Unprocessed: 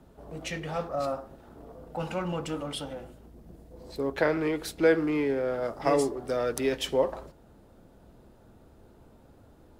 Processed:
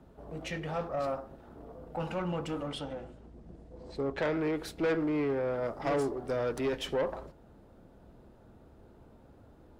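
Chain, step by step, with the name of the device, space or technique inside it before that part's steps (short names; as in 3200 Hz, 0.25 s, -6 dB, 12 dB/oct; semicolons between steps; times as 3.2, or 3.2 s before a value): 2.71–4.35 LPF 9100 Hz 24 dB/oct; tube preamp driven hard (tube stage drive 25 dB, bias 0.3; high shelf 4400 Hz -9 dB)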